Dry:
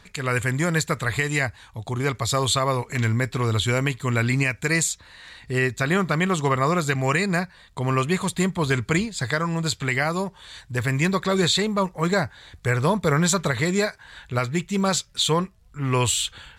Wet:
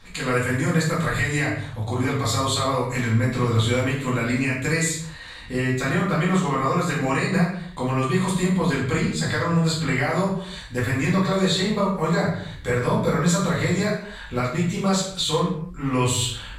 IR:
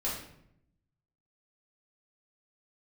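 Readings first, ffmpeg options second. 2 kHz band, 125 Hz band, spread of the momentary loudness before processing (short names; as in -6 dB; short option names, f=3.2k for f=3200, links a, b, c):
-1.0 dB, +1.0 dB, 8 LU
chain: -filter_complex "[0:a]acompressor=threshold=-25dB:ratio=4[a];[1:a]atrim=start_sample=2205,afade=t=out:st=0.39:d=0.01,atrim=end_sample=17640[b];[a][b]afir=irnorm=-1:irlink=0"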